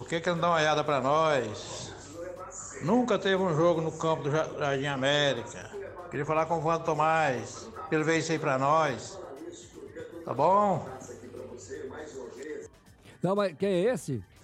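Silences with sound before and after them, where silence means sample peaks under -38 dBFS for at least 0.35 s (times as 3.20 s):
12.66–13.23 s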